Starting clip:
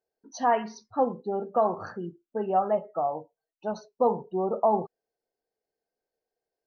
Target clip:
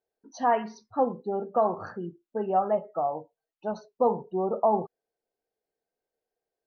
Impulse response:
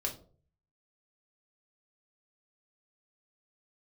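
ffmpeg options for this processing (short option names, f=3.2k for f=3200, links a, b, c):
-af "highshelf=f=5k:g=-9"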